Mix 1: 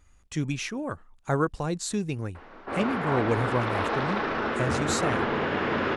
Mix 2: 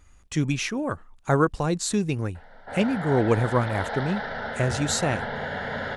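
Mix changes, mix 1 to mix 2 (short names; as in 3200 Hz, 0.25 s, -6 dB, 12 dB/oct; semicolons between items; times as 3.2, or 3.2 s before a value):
speech +4.5 dB; background: add fixed phaser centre 1700 Hz, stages 8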